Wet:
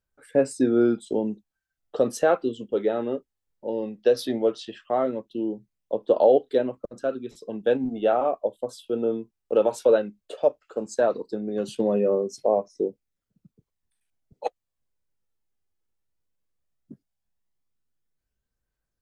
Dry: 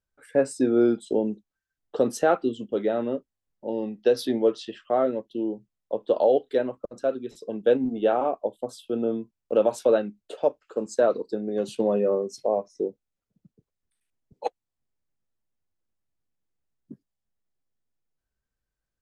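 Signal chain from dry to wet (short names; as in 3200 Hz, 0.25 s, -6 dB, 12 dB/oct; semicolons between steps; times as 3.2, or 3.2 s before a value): phaser 0.16 Hz, delay 2.5 ms, feedback 28%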